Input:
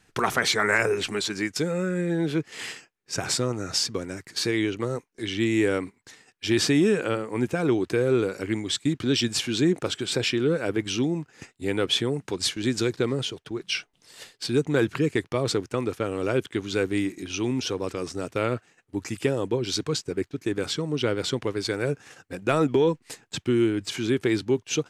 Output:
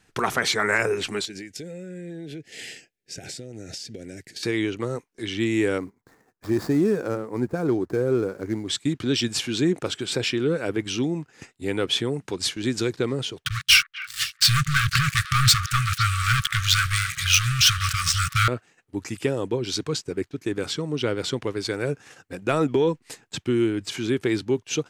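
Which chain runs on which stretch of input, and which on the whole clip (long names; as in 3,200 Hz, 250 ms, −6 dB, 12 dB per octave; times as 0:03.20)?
0:01.25–0:04.43: downward compressor 12 to 1, threshold −32 dBFS + Butterworth band-reject 1,100 Hz, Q 1.1
0:05.78–0:08.68: running median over 15 samples + parametric band 3,000 Hz −10 dB 1.2 octaves
0:13.45–0:18.48: leveller curve on the samples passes 5 + linear-phase brick-wall band-stop 150–1,100 Hz + echo through a band-pass that steps 251 ms, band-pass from 1,500 Hz, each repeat 1.4 octaves, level −11 dB
whole clip: no processing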